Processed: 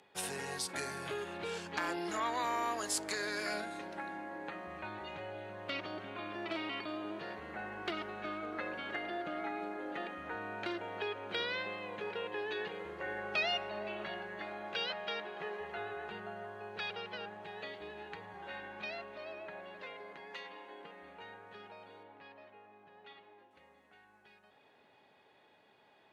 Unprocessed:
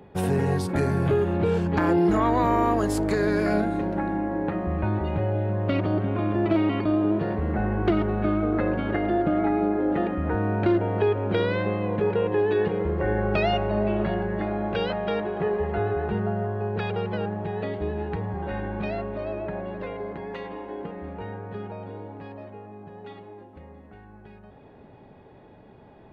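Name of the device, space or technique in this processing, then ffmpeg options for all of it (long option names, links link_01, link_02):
piezo pickup straight into a mixer: -filter_complex "[0:a]asettb=1/sr,asplit=3[link_01][link_02][link_03];[link_01]atrim=end=22.034[link_04];[link_02]atrim=start=22.03:end=23.51,asetpts=PTS-STARTPTS,afade=type=in:duration=0.004:curve=qsin,afade=type=out:start_time=1.476:duration=0.004:curve=qsin,lowpass=3500[link_05];[link_03]atrim=start=23.506[link_06];[link_04][link_05]acrossfade=duration=0.004:curve1=hsin:curve2=qsin[link_07];[link_07][link_06]acrossfade=duration=0.004:curve1=qsin:curve2=hsin,lowpass=7500,aderivative,volume=6.5dB"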